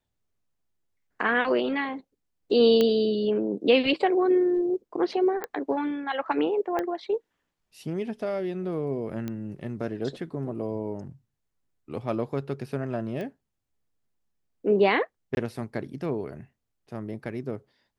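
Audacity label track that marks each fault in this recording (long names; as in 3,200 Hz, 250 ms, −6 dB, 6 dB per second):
2.810000	2.810000	click −11 dBFS
5.440000	5.440000	click −17 dBFS
6.790000	6.790000	click −16 dBFS
9.280000	9.280000	click −20 dBFS
13.210000	13.210000	click −24 dBFS
15.350000	15.370000	drop-out 21 ms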